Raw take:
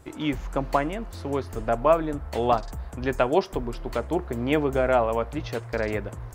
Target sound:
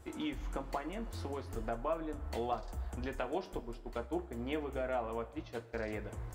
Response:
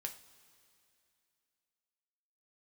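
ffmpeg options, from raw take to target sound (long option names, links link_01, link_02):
-filter_complex "[0:a]asettb=1/sr,asplit=3[link_01][link_02][link_03];[link_01]atrim=end=3.604[link_04];[link_02]atrim=start=3.6:end=5.8,asetpts=PTS-STARTPTS,afade=type=in:duration=0.004:curve=qsin,afade=type=out:start_time=2.196:duration=0.004:curve=qsin,agate=range=-33dB:threshold=-24dB:ratio=3:detection=peak[link_05];[link_03]atrim=start=5.796[link_06];[link_04][link_05]acrossfade=duration=0.004:curve1=hsin:curve2=qsin[link_07];[link_07][link_06]acrossfade=duration=0.004:curve1=qsin:curve2=hsin,acompressor=threshold=-33dB:ratio=2.5[link_08];[1:a]atrim=start_sample=2205,asetrate=83790,aresample=44100[link_09];[link_08][link_09]afir=irnorm=-1:irlink=0,volume=3.5dB"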